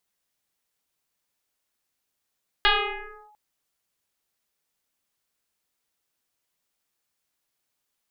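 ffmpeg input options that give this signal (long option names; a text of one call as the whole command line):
ffmpeg -f lavfi -i "aevalsrc='0.2*pow(10,-3*t/1.03)*sin(2*PI*842*t+7.1*clip(1-t/0.67,0,1)*sin(2*PI*0.49*842*t))':duration=0.7:sample_rate=44100" out.wav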